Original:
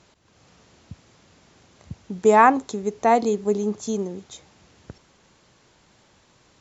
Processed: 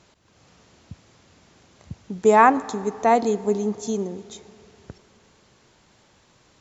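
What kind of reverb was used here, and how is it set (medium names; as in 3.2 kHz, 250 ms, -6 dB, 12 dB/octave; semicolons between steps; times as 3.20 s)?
algorithmic reverb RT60 2.9 s, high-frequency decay 0.55×, pre-delay 55 ms, DRR 19 dB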